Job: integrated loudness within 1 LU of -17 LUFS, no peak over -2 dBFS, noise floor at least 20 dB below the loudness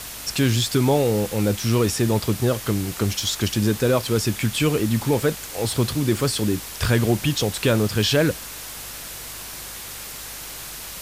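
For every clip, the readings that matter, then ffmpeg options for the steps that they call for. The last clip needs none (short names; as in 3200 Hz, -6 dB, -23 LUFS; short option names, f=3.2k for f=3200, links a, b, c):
hum 50 Hz; harmonics up to 150 Hz; hum level -42 dBFS; noise floor -36 dBFS; noise floor target -42 dBFS; loudness -22.0 LUFS; peak -8.0 dBFS; loudness target -17.0 LUFS
-> -af "bandreject=f=50:t=h:w=4,bandreject=f=100:t=h:w=4,bandreject=f=150:t=h:w=4"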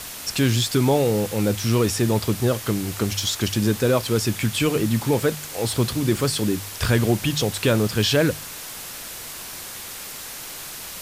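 hum none; noise floor -36 dBFS; noise floor target -43 dBFS
-> -af "afftdn=nr=7:nf=-36"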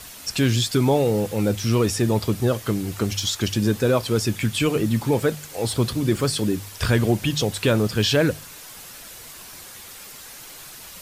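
noise floor -41 dBFS; noise floor target -42 dBFS
-> -af "afftdn=nr=6:nf=-41"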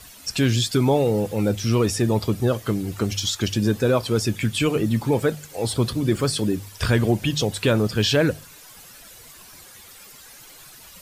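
noise floor -46 dBFS; loudness -22.0 LUFS; peak -9.0 dBFS; loudness target -17.0 LUFS
-> -af "volume=5dB"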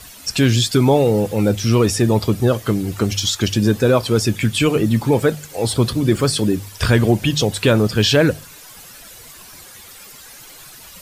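loudness -17.0 LUFS; peak -4.0 dBFS; noise floor -41 dBFS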